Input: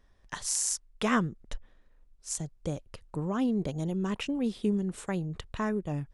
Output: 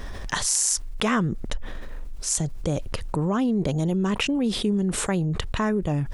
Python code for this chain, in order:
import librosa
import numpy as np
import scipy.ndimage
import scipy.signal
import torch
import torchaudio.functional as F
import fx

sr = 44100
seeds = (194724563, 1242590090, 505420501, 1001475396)

y = fx.env_flatten(x, sr, amount_pct=70)
y = y * 10.0 ** (2.0 / 20.0)